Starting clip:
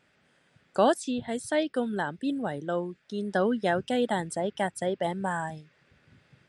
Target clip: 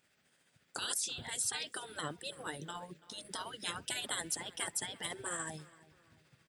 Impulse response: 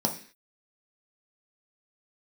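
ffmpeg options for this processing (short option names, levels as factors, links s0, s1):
-filter_complex "[0:a]aemphasis=mode=production:type=75fm,afftfilt=real='re*lt(hypot(re,im),0.0891)':imag='im*lt(hypot(re,im),0.0891)':win_size=1024:overlap=0.75,agate=range=0.447:threshold=0.00316:ratio=16:detection=peak,tremolo=f=14:d=0.39,asplit=2[s0][s1];[s1]adelay=334,lowpass=f=2900:p=1,volume=0.112,asplit=2[s2][s3];[s3]adelay=334,lowpass=f=2900:p=1,volume=0.42,asplit=2[s4][s5];[s5]adelay=334,lowpass=f=2900:p=1,volume=0.42[s6];[s2][s4][s6]amix=inputs=3:normalize=0[s7];[s0][s7]amix=inputs=2:normalize=0"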